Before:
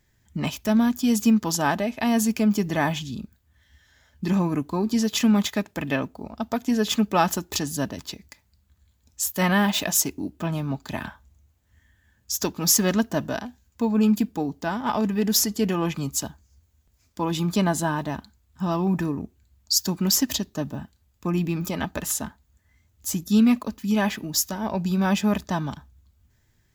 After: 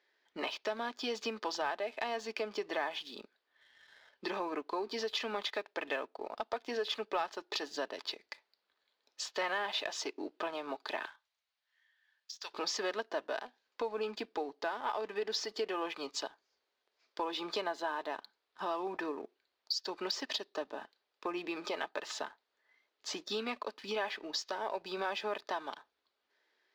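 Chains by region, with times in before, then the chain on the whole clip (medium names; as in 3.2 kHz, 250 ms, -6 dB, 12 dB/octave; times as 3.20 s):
11.05–12.54 s: amplifier tone stack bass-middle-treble 10-0-10 + compression, threshold -37 dBFS
whole clip: elliptic band-pass 410–4500 Hz, stop band 50 dB; compression 3:1, threshold -40 dBFS; waveshaping leveller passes 1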